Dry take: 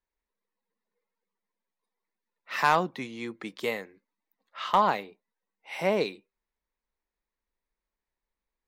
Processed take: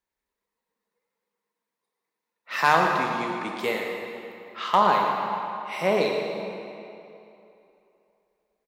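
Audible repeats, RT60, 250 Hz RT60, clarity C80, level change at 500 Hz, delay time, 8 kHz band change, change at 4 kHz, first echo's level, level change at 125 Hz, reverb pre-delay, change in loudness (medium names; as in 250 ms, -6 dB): 1, 2.9 s, 2.6 s, 2.0 dB, +5.0 dB, 113 ms, +4.5 dB, +4.5 dB, -10.0 dB, +4.0 dB, 26 ms, +4.0 dB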